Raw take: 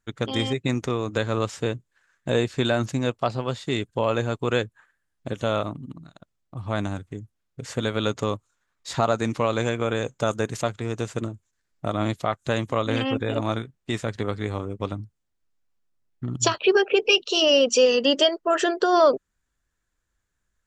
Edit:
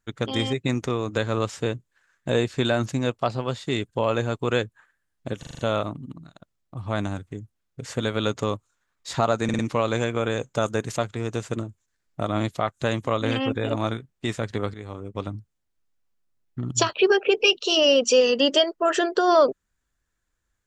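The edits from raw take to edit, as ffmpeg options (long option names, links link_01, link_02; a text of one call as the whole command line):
ffmpeg -i in.wav -filter_complex "[0:a]asplit=10[link_01][link_02][link_03][link_04][link_05][link_06][link_07][link_08][link_09][link_10];[link_01]atrim=end=5.432[link_11];[link_02]atrim=start=5.388:end=5.432[link_12];[link_03]atrim=start=5.388:end=5.432[link_13];[link_04]atrim=start=5.388:end=5.432[link_14];[link_05]atrim=start=5.388:end=5.432[link_15];[link_06]atrim=start=5.388:end=9.292[link_16];[link_07]atrim=start=9.238:end=9.292[link_17];[link_08]atrim=start=9.238:end=9.292[link_18];[link_09]atrim=start=9.238:end=14.39,asetpts=PTS-STARTPTS,afade=type=out:start_time=5.148:duration=0.004:curve=hsin:silence=0.237137[link_19];[link_10]atrim=start=14.39,asetpts=PTS-STARTPTS,afade=type=in:duration=0.62:silence=0.237137[link_20];[link_11][link_12]acrossfade=duration=0.004:curve1=hsin:curve2=hsin[link_21];[link_21][link_13]acrossfade=duration=0.004:curve1=hsin:curve2=hsin[link_22];[link_22][link_14]acrossfade=duration=0.004:curve1=hsin:curve2=hsin[link_23];[link_23][link_15]acrossfade=duration=0.004:curve1=hsin:curve2=hsin[link_24];[link_24][link_16]acrossfade=duration=0.004:curve1=hsin:curve2=hsin[link_25];[link_25][link_17]acrossfade=duration=0.004:curve1=hsin:curve2=hsin[link_26];[link_26][link_18]acrossfade=duration=0.004:curve1=hsin:curve2=hsin[link_27];[link_19][link_20]concat=n=2:v=0:a=1[link_28];[link_27][link_28]acrossfade=duration=0.004:curve1=hsin:curve2=hsin" out.wav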